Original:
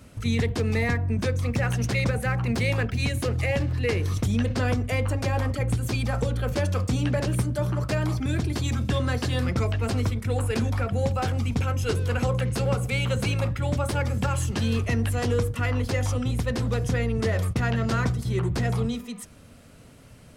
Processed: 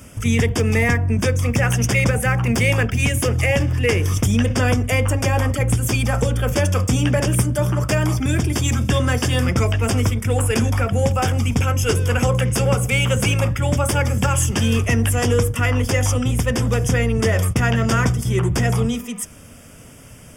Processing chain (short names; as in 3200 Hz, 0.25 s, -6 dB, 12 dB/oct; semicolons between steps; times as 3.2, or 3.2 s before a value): Butterworth band-stop 4100 Hz, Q 3.2; high shelf 3400 Hz +8 dB; gain +6.5 dB